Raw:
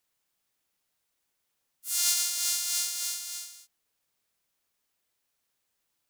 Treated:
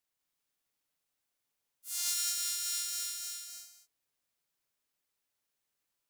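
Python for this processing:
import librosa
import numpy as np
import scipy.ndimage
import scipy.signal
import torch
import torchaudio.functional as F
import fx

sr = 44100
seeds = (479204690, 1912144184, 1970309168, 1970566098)

y = fx.echo_multitap(x, sr, ms=(194, 201), db=(-4.0, -5.5))
y = y * librosa.db_to_amplitude(-8.0)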